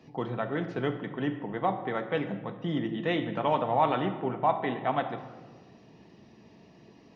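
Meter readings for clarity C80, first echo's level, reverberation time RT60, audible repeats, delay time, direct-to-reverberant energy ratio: 12.0 dB, no echo audible, 1.4 s, no echo audible, no echo audible, 6.0 dB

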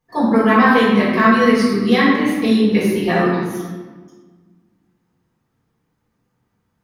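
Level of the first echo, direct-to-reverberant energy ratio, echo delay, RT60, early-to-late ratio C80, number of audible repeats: no echo audible, −10.0 dB, no echo audible, 1.5 s, 2.0 dB, no echo audible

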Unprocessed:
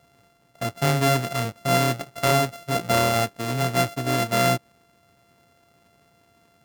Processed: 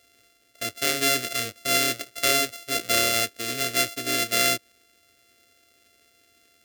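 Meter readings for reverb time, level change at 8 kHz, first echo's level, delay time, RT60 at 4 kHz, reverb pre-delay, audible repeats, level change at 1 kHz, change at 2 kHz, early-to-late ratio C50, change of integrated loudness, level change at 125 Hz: no reverb audible, +6.0 dB, no echo audible, no echo audible, no reverb audible, no reverb audible, no echo audible, −6.5 dB, +2.0 dB, no reverb audible, 0.0 dB, −16.5 dB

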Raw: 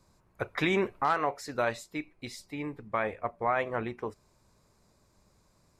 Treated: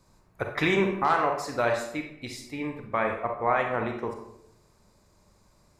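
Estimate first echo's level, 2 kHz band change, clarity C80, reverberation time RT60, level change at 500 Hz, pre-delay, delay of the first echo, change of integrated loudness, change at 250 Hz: no echo audible, +4.0 dB, 9.0 dB, 0.75 s, +4.5 dB, 32 ms, no echo audible, +4.0 dB, +4.0 dB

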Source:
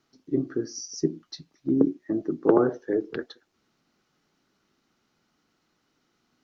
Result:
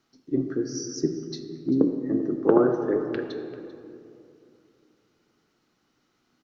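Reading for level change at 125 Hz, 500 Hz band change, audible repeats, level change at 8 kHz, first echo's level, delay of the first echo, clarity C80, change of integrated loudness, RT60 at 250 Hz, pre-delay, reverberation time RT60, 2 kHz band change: +1.5 dB, +1.5 dB, 1, can't be measured, −18.0 dB, 392 ms, 7.5 dB, +0.5 dB, 3.2 s, 4 ms, 2.6 s, +1.0 dB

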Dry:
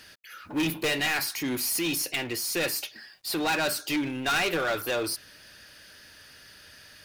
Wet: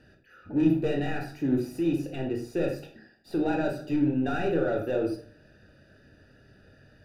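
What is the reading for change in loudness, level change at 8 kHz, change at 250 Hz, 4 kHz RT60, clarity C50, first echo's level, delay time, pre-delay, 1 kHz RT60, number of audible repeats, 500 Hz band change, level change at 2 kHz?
−1.0 dB, below −20 dB, +5.5 dB, 0.35 s, 7.5 dB, no echo audible, no echo audible, 21 ms, 0.45 s, no echo audible, +3.0 dB, −10.5 dB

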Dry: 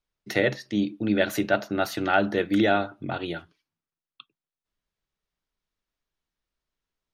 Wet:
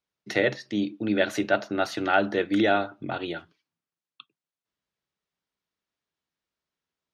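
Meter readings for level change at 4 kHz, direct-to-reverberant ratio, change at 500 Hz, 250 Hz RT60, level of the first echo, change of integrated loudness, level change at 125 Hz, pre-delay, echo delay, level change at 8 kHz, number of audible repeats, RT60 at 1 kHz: 0.0 dB, no reverb audible, 0.0 dB, no reverb audible, no echo audible, −0.5 dB, −4.0 dB, no reverb audible, no echo audible, −2.5 dB, no echo audible, no reverb audible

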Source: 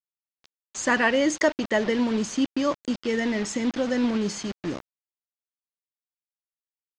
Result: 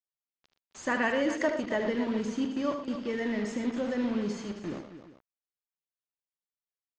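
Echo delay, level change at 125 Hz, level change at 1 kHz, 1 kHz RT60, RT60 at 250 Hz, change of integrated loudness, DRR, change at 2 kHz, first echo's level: 43 ms, −5.0 dB, −5.5 dB, no reverb audible, no reverb audible, −6.0 dB, no reverb audible, −7.0 dB, −15.5 dB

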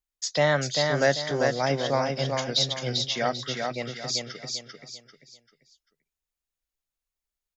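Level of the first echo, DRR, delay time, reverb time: −4.0 dB, no reverb audible, 393 ms, no reverb audible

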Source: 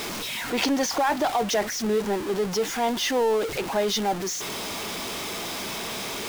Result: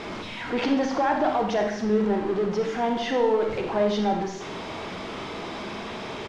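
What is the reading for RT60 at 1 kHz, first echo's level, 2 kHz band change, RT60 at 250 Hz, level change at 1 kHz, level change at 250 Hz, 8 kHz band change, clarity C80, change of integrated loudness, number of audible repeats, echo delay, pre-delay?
0.65 s, −12.5 dB, −2.5 dB, 0.85 s, 0.0 dB, +2.5 dB, −15.5 dB, 8.0 dB, 0.0 dB, 1, 81 ms, 30 ms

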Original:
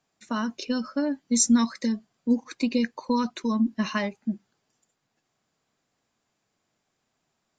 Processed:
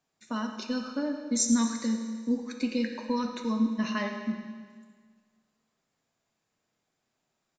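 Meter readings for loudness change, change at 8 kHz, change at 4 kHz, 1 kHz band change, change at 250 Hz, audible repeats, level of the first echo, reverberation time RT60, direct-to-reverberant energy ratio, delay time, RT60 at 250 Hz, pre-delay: −3.5 dB, −4.0 dB, −3.5 dB, −4.0 dB, −3.5 dB, 1, −13.5 dB, 1.7 s, 3.5 dB, 107 ms, 1.7 s, 8 ms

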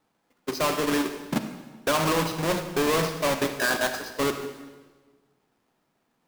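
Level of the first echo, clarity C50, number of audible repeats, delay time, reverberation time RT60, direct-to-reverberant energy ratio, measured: no echo audible, 8.0 dB, no echo audible, no echo audible, 1.3 s, 7.5 dB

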